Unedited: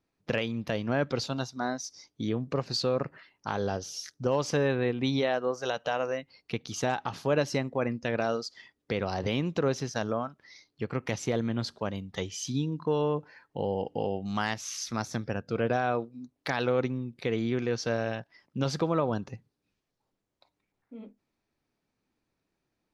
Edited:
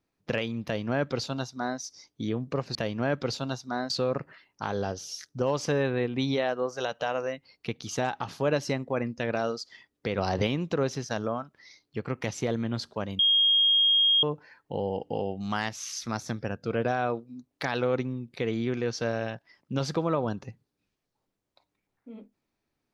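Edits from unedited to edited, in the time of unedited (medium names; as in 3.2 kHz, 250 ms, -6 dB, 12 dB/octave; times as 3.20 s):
0.64–1.79 s: copy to 2.75 s
9.03–9.32 s: gain +4 dB
12.04–13.08 s: bleep 3.25 kHz -18.5 dBFS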